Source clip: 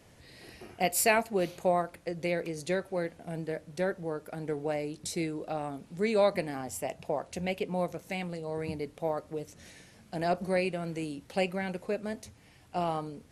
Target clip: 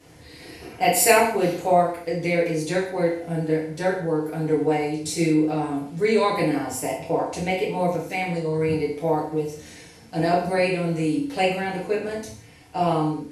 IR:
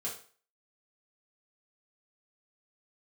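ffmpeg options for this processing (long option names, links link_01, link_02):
-filter_complex "[1:a]atrim=start_sample=2205,atrim=end_sample=6615,asetrate=29106,aresample=44100[link_01];[0:a][link_01]afir=irnorm=-1:irlink=0,volume=4.5dB"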